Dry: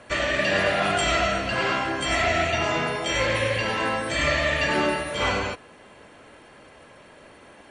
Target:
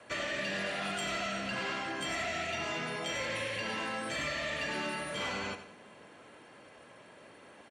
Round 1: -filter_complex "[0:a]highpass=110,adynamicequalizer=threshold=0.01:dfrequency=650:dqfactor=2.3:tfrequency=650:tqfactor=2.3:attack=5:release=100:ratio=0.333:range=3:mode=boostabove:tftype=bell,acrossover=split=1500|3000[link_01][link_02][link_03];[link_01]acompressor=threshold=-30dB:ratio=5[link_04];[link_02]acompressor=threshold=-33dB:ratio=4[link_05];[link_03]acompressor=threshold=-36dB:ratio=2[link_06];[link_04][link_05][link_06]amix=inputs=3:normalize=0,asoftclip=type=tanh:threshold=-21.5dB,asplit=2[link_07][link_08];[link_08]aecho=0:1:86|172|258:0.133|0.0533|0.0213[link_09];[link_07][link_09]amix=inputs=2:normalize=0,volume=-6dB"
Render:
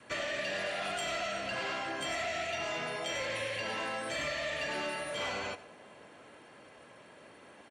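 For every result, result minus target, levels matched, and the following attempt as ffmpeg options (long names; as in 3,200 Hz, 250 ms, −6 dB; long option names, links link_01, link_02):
250 Hz band −4.5 dB; echo-to-direct −6 dB
-filter_complex "[0:a]highpass=110,adynamicequalizer=threshold=0.01:dfrequency=200:dqfactor=2.3:tfrequency=200:tqfactor=2.3:attack=5:release=100:ratio=0.333:range=3:mode=boostabove:tftype=bell,acrossover=split=1500|3000[link_01][link_02][link_03];[link_01]acompressor=threshold=-30dB:ratio=5[link_04];[link_02]acompressor=threshold=-33dB:ratio=4[link_05];[link_03]acompressor=threshold=-36dB:ratio=2[link_06];[link_04][link_05][link_06]amix=inputs=3:normalize=0,asoftclip=type=tanh:threshold=-21.5dB,asplit=2[link_07][link_08];[link_08]aecho=0:1:86|172|258:0.133|0.0533|0.0213[link_09];[link_07][link_09]amix=inputs=2:normalize=0,volume=-6dB"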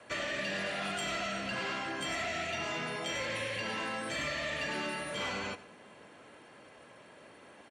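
echo-to-direct −6 dB
-filter_complex "[0:a]highpass=110,adynamicequalizer=threshold=0.01:dfrequency=200:dqfactor=2.3:tfrequency=200:tqfactor=2.3:attack=5:release=100:ratio=0.333:range=3:mode=boostabove:tftype=bell,acrossover=split=1500|3000[link_01][link_02][link_03];[link_01]acompressor=threshold=-30dB:ratio=5[link_04];[link_02]acompressor=threshold=-33dB:ratio=4[link_05];[link_03]acompressor=threshold=-36dB:ratio=2[link_06];[link_04][link_05][link_06]amix=inputs=3:normalize=0,asoftclip=type=tanh:threshold=-21.5dB,asplit=2[link_07][link_08];[link_08]aecho=0:1:86|172|258|344:0.266|0.106|0.0426|0.017[link_09];[link_07][link_09]amix=inputs=2:normalize=0,volume=-6dB"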